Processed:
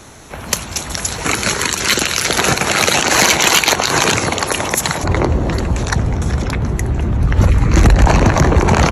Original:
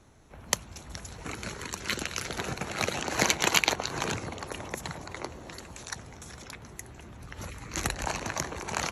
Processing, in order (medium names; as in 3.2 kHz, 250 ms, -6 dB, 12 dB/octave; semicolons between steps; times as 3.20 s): tilt EQ +1.5 dB/octave, from 5.03 s -3 dB/octave; saturation -16.5 dBFS, distortion -10 dB; resampled via 32 kHz; loudness maximiser +22.5 dB; trim -1 dB